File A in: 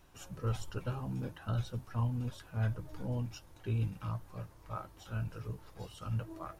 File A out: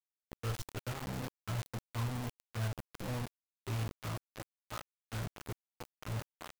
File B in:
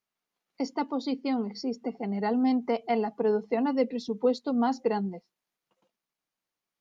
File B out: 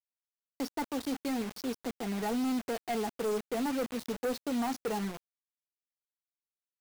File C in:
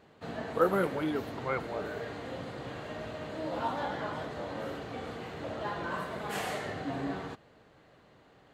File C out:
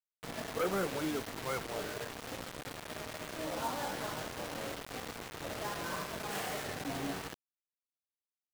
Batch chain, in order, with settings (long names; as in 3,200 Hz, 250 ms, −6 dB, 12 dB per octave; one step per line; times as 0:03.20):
gain into a clipping stage and back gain 26 dB
bit-depth reduction 6 bits, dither none
level −4 dB